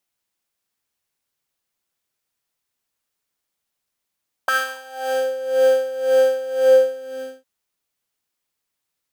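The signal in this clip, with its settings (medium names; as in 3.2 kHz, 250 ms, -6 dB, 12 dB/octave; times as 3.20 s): synth patch with tremolo C5, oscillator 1 triangle, interval +19 st, sub -9.5 dB, noise -20 dB, filter highpass, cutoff 330 Hz, Q 7, filter envelope 2 oct, filter decay 0.80 s, attack 4.7 ms, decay 0.16 s, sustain -11 dB, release 0.80 s, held 2.16 s, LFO 1.9 Hz, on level 15 dB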